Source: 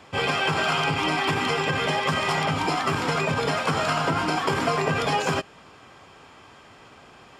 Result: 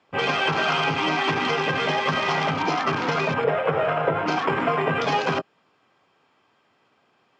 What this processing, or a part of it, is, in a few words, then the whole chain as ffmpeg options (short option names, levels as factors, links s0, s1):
over-cleaned archive recording: -filter_complex "[0:a]asettb=1/sr,asplit=3[s0][s1][s2];[s0]atrim=end=3.444[s3];[s1]atrim=start=3.44:end=4.26,asetpts=PTS-STARTPTS,afade=t=in:d=0.004:c=qsin,afade=t=out:st=0.816:d=0.004:c=qsin,equalizer=f=125:t=o:w=1:g=4,equalizer=f=250:t=o:w=1:g=-12,equalizer=f=500:t=o:w=1:g=11,equalizer=f=1000:t=o:w=1:g=-5,equalizer=f=4000:t=o:w=1:g=-7,equalizer=f=8000:t=o:w=1:g=-10[s4];[s2]atrim=start=4.256[s5];[s3][s4]acrossfade=d=0.004:c1=hsin:c2=qsin[s6];[s6][s5]acrossfade=d=0.004:c1=qsin:c2=hsin,highpass=150,lowpass=5600,afwtdn=0.0178,volume=1.19"